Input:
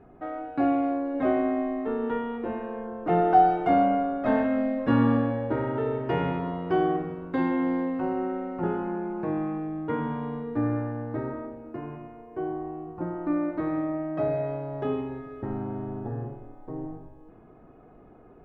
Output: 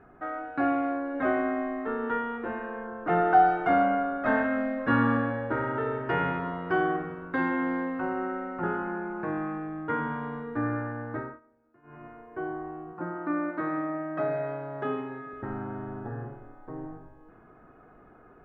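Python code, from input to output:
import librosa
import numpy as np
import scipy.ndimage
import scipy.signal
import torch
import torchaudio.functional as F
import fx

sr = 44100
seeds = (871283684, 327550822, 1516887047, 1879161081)

y = fx.highpass(x, sr, hz=130.0, slope=24, at=(12.93, 15.33))
y = fx.edit(y, sr, fx.fade_down_up(start_s=11.16, length_s=0.91, db=-23.5, fade_s=0.24), tone=tone)
y = fx.peak_eq(y, sr, hz=1500.0, db=13.0, octaves=1.0)
y = y * 10.0 ** (-4.0 / 20.0)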